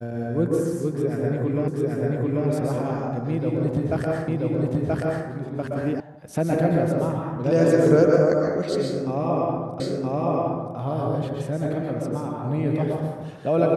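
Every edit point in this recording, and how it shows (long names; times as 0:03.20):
0:01.68: the same again, the last 0.79 s
0:04.28: the same again, the last 0.98 s
0:06.00: cut off before it has died away
0:09.80: the same again, the last 0.97 s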